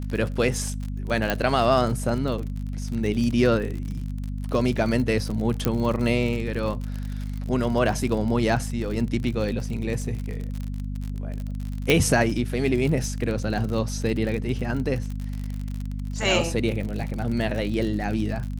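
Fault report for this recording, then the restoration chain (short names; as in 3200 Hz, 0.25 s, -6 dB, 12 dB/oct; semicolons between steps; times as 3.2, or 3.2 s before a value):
crackle 53/s -29 dBFS
hum 50 Hz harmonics 5 -30 dBFS
1.3 pop -9 dBFS
5.65 pop -8 dBFS
11.9 pop -5 dBFS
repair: de-click; de-hum 50 Hz, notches 5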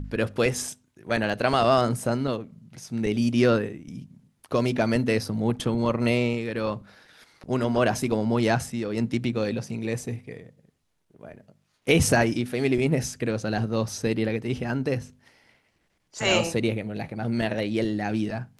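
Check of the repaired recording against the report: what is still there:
1.3 pop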